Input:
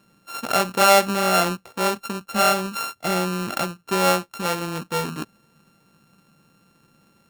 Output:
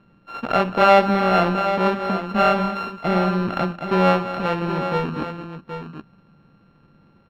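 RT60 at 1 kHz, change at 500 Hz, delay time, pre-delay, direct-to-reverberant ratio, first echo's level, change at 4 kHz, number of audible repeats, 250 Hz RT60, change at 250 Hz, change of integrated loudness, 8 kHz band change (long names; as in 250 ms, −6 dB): no reverb audible, +3.0 dB, 70 ms, no reverb audible, no reverb audible, −19.5 dB, −5.5 dB, 3, no reverb audible, +5.5 dB, +1.5 dB, below −20 dB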